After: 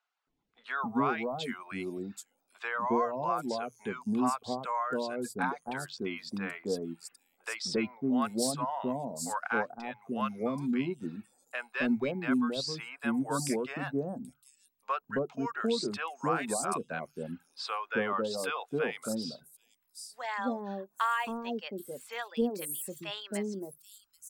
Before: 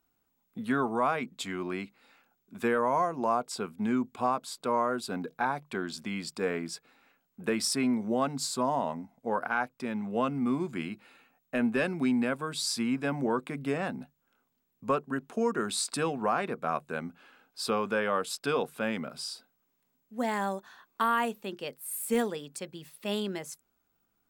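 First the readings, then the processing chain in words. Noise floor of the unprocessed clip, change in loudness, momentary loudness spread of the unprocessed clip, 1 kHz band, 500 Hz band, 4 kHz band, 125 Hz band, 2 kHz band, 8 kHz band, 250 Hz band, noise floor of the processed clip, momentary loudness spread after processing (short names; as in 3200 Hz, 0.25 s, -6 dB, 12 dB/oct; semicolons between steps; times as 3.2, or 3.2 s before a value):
-77 dBFS, -2.5 dB, 11 LU, -2.5 dB, -3.0 dB, -2.5 dB, -2.0 dB, -1.0 dB, -2.5 dB, -1.5 dB, -76 dBFS, 11 LU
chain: notches 60/120 Hz; reverb removal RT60 0.78 s; three bands offset in time mids, lows, highs 0.27/0.78 s, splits 690/5900 Hz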